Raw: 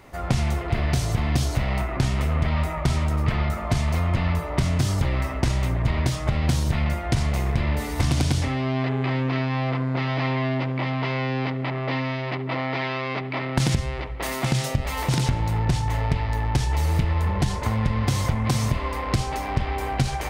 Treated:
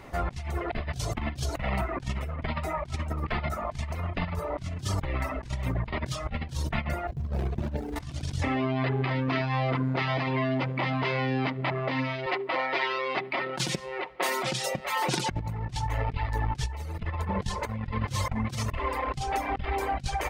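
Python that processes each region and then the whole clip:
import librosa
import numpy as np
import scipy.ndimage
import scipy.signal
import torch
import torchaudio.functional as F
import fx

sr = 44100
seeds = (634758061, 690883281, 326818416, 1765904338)

y = fx.chain(x, sr, fx.median_filter(points=41),
    fx.highpass(hz=43.0, slope=24), at=(7.07, 7.96))
y = fx.chain(y, sr, fx.highpass(hz=310.0, slope=12),
    fx.comb(ms=5.5, depth=0.55), at=(12.26, 15.31))
y = fx.dereverb_blind(y, sr, rt60_s=1.5)
y = fx.high_shelf(y, sr, hz=6500.0, db=-6.5)
y = fx.over_compress(y, sr, threshold_db=-29.0, ratio=-0.5)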